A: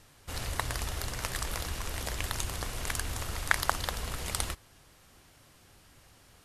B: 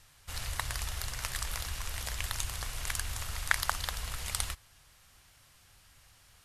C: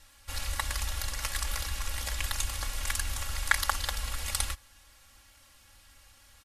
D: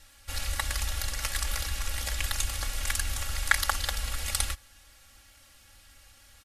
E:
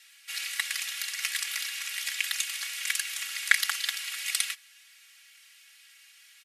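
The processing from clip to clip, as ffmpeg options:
-af "equalizer=f=320:w=0.59:g=-13"
-af "aecho=1:1:3.6:0.94"
-af "bandreject=f=1000:w=5,volume=1.26"
-af "highpass=f=2200:t=q:w=2.1"

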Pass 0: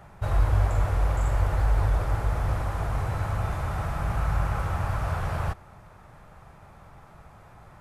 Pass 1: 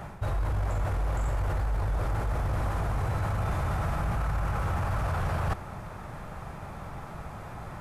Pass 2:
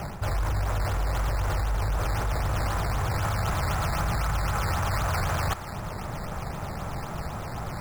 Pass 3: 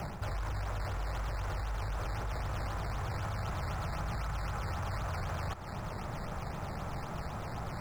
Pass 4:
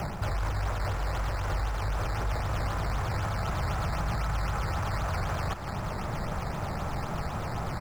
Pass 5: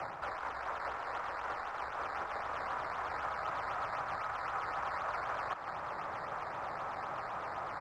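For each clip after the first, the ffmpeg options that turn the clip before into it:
-af "equalizer=f=240:t=o:w=1.4:g=3,alimiter=limit=0.0794:level=0:latency=1:release=12,areverse,acompressor=threshold=0.0178:ratio=6,areverse,volume=2.82"
-filter_complex "[0:a]acrossover=split=860[s0][s1];[s0]alimiter=level_in=1.58:limit=0.0631:level=0:latency=1:release=363,volume=0.631[s2];[s1]acrusher=samples=10:mix=1:aa=0.000001:lfo=1:lforange=10:lforate=3.9[s3];[s2][s3]amix=inputs=2:normalize=0,volume=2.11"
-filter_complex "[0:a]acrossover=split=780|7000[s0][s1][s2];[s0]acompressor=threshold=0.0316:ratio=4[s3];[s1]acompressor=threshold=0.0126:ratio=4[s4];[s2]acompressor=threshold=0.00126:ratio=4[s5];[s3][s4][s5]amix=inputs=3:normalize=0,volume=0.596"
-af "aecho=1:1:169:0.251,volume=2"
-af "afreqshift=-35,bandpass=f=1200:t=q:w=1.1:csg=0"

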